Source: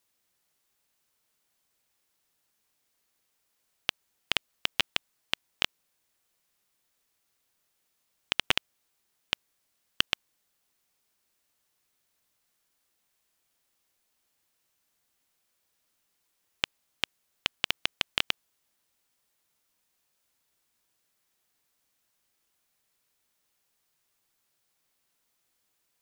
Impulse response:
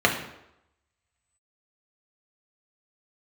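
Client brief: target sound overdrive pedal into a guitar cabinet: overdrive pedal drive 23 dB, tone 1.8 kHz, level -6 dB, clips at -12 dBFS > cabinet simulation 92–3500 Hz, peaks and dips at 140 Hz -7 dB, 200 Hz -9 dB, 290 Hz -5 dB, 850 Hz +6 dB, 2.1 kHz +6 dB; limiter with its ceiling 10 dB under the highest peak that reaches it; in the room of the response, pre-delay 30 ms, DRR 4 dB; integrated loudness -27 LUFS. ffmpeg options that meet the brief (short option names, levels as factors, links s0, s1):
-filter_complex "[0:a]alimiter=limit=0.237:level=0:latency=1,asplit=2[s0][s1];[1:a]atrim=start_sample=2205,adelay=30[s2];[s1][s2]afir=irnorm=-1:irlink=0,volume=0.0794[s3];[s0][s3]amix=inputs=2:normalize=0,asplit=2[s4][s5];[s5]highpass=f=720:p=1,volume=14.1,asoftclip=type=tanh:threshold=0.251[s6];[s4][s6]amix=inputs=2:normalize=0,lowpass=f=1800:p=1,volume=0.501,highpass=92,equalizer=f=140:t=q:w=4:g=-7,equalizer=f=200:t=q:w=4:g=-9,equalizer=f=290:t=q:w=4:g=-5,equalizer=f=850:t=q:w=4:g=6,equalizer=f=2100:t=q:w=4:g=6,lowpass=f=3500:w=0.5412,lowpass=f=3500:w=1.3066,volume=2.51"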